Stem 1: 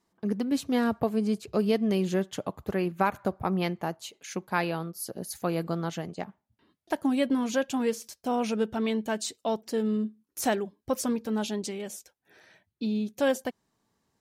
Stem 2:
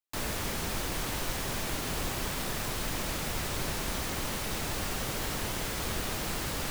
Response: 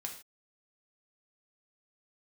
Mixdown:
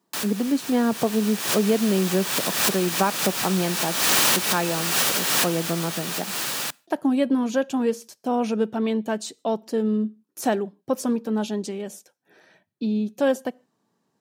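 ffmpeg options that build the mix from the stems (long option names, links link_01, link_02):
-filter_complex "[0:a]tiltshelf=frequency=1300:gain=3,volume=1.5dB,asplit=3[link_01][link_02][link_03];[link_02]volume=-19dB[link_04];[1:a]tiltshelf=frequency=790:gain=-6.5,dynaudnorm=framelen=190:gausssize=13:maxgain=10dB,volume=2.5dB,asplit=2[link_05][link_06];[link_06]volume=-20.5dB[link_07];[link_03]apad=whole_len=295657[link_08];[link_05][link_08]sidechaincompress=threshold=-37dB:ratio=8:attack=31:release=181[link_09];[2:a]atrim=start_sample=2205[link_10];[link_04][link_07]amix=inputs=2:normalize=0[link_11];[link_11][link_10]afir=irnorm=-1:irlink=0[link_12];[link_01][link_09][link_12]amix=inputs=3:normalize=0,highpass=frequency=140:width=0.5412,highpass=frequency=140:width=1.3066,bandreject=frequency=2100:width=15"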